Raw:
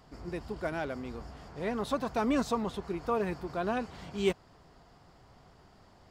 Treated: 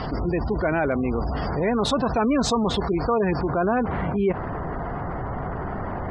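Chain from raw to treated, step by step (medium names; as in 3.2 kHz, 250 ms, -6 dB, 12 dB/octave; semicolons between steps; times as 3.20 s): spectral gate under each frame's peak -25 dB strong; low-pass 4.9 kHz 24 dB/octave, from 0.92 s 8.1 kHz, from 3.41 s 2 kHz; level flattener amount 70%; trim +4.5 dB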